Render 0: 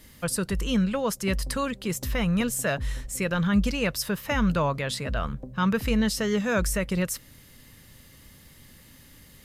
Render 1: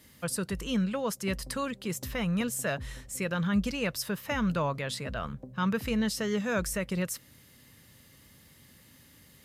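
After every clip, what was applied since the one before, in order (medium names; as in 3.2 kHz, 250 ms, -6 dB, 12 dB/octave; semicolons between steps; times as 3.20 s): high-pass 76 Hz 12 dB/octave; trim -4.5 dB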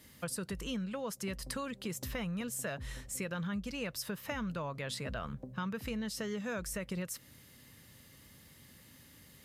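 compression 6:1, threshold -34 dBFS, peak gain reduction 11.5 dB; trim -1 dB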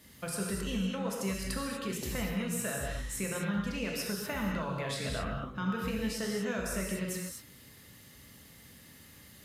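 gated-style reverb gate 270 ms flat, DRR -2 dB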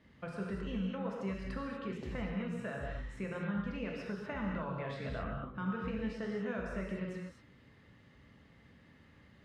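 low-pass 2.1 kHz 12 dB/octave; trim -3.5 dB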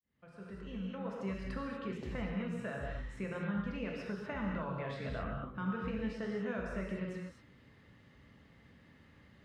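fade-in on the opening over 1.37 s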